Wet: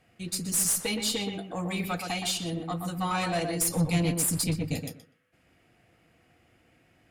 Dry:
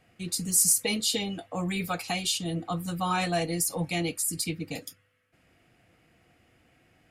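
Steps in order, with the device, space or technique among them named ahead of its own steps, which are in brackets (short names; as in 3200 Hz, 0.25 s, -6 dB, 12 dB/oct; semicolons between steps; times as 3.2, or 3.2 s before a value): 3.61–4.83 tone controls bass +13 dB, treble +5 dB; rockabilly slapback (tube stage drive 20 dB, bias 0.35; tape echo 0.123 s, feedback 22%, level -4 dB, low-pass 1800 Hz)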